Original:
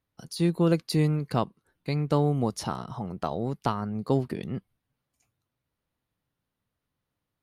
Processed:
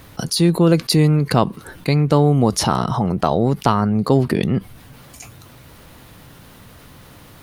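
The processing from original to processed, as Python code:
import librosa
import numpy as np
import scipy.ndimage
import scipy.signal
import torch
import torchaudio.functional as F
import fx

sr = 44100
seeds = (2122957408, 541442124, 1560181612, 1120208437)

y = fx.env_flatten(x, sr, amount_pct=50)
y = y * librosa.db_to_amplitude(8.0)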